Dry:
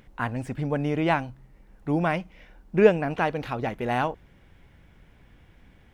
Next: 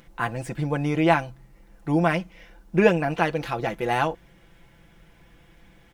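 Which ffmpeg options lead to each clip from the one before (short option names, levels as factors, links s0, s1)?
-af "bass=f=250:g=-3,treble=f=4000:g=5,aecho=1:1:5.9:0.65,volume=1.19"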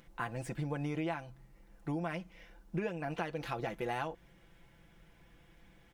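-af "acompressor=threshold=0.0562:ratio=10,volume=0.422"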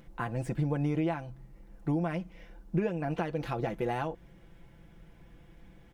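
-af "tiltshelf=f=760:g=4.5,volume=1.5"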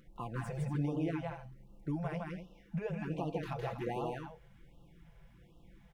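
-filter_complex "[0:a]asplit=2[s0][s1];[s1]aecho=0:1:160.3|239.1:0.794|0.316[s2];[s0][s2]amix=inputs=2:normalize=0,afftfilt=real='re*(1-between(b*sr/1024,240*pow(1900/240,0.5+0.5*sin(2*PI*1.3*pts/sr))/1.41,240*pow(1900/240,0.5+0.5*sin(2*PI*1.3*pts/sr))*1.41))':imag='im*(1-between(b*sr/1024,240*pow(1900/240,0.5+0.5*sin(2*PI*1.3*pts/sr))/1.41,240*pow(1900/240,0.5+0.5*sin(2*PI*1.3*pts/sr))*1.41))':win_size=1024:overlap=0.75,volume=0.473"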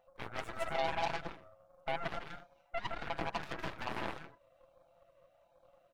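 -af "afftfilt=real='real(if(lt(b,1008),b+24*(1-2*mod(floor(b/24),2)),b),0)':imag='imag(if(lt(b,1008),b+24*(1-2*mod(floor(b/24),2)),b),0)':win_size=2048:overlap=0.75,aeval=exprs='0.0708*(cos(1*acos(clip(val(0)/0.0708,-1,1)))-cos(1*PI/2))+0.0141*(cos(7*acos(clip(val(0)/0.0708,-1,1)))-cos(7*PI/2))+0.01*(cos(8*acos(clip(val(0)/0.0708,-1,1)))-cos(8*PI/2))':c=same,volume=0.891"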